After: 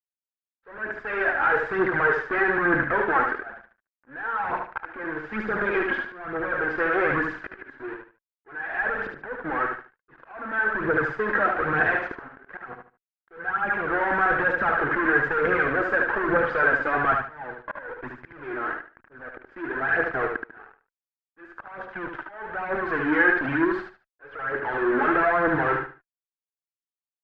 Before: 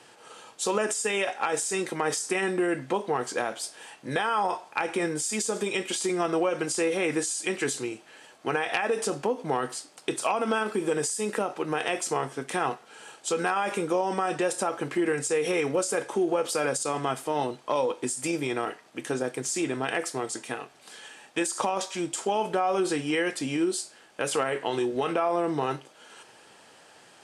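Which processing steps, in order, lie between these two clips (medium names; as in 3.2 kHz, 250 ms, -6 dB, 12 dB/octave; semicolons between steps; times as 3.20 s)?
level-controlled noise filter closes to 840 Hz, open at -21.5 dBFS; in parallel at -8 dB: word length cut 6-bit, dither none; on the sum: fuzz box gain 31 dB, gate -39 dBFS; phaser 1.1 Hz, delay 3.8 ms, feedback 51%; slow attack 799 ms; four-pole ladder low-pass 1.7 kHz, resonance 75%; on a send: feedback delay 74 ms, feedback 25%, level -5 dB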